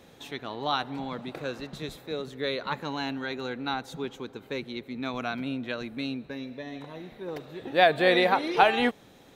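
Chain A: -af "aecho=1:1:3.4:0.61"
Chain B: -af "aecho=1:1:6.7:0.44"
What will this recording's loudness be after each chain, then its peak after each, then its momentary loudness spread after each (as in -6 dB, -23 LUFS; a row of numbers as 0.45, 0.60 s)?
-27.5, -28.5 LUFS; -5.0, -5.5 dBFS; 17, 17 LU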